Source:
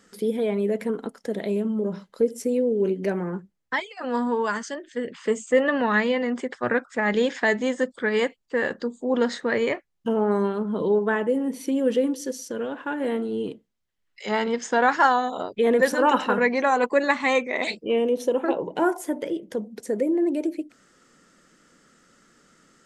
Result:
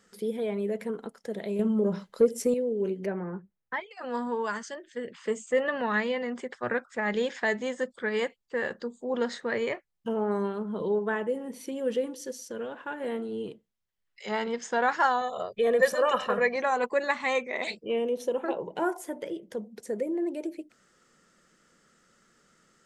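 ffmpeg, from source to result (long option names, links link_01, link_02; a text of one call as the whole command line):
ffmpeg -i in.wav -filter_complex "[0:a]asettb=1/sr,asplit=3[link_01][link_02][link_03];[link_01]atrim=end=1.594[link_04];[link_02]atrim=start=1.59:end=2.54,asetpts=PTS-STARTPTS,afade=type=in:duration=0.004:curve=qsin,afade=type=out:start_time=0.946:duration=0.004:curve=qsin,acontrast=78[link_05];[link_03]atrim=start=2.536[link_06];[link_04][link_05]acrossfade=duration=0.004:curve1=hsin:curve2=qsin[link_07];[link_07][link_06]acrossfade=duration=0.004:curve1=qsin:curve2=hsin,asettb=1/sr,asplit=3[link_08][link_09][link_10];[link_08]atrim=end=3.064[link_11];[link_09]atrim=start=3.06:end=3.91,asetpts=PTS-STARTPTS,afade=type=in:duration=0.004:curve=qsin,afade=type=out:start_time=0.846:duration=0.004:curve=qsin,lowpass=2200[link_12];[link_10]atrim=start=3.906[link_13];[link_11][link_12]acrossfade=duration=0.004:curve1=hsin:curve2=qsin[link_14];[link_14][link_13]acrossfade=duration=0.004:curve1=qsin:curve2=hsin,asettb=1/sr,asplit=3[link_15][link_16][link_17];[link_15]atrim=end=15.214[link_18];[link_16]atrim=start=15.21:end=16.56,asetpts=PTS-STARTPTS,afade=type=in:duration=0.004:curve=qsin,afade=type=out:start_time=1.346:duration=0.004:curve=qsin,aecho=1:1:1.7:0.64,atrim=end_sample=59535[link_19];[link_17]atrim=start=16.556[link_20];[link_18][link_19]acrossfade=duration=0.004:curve1=hsin:curve2=qsin[link_21];[link_21][link_20]acrossfade=duration=0.004:curve1=qsin:curve2=hsin,equalizer=frequency=280:width_type=o:width=0.28:gain=-8.5,volume=-5.5dB" out.wav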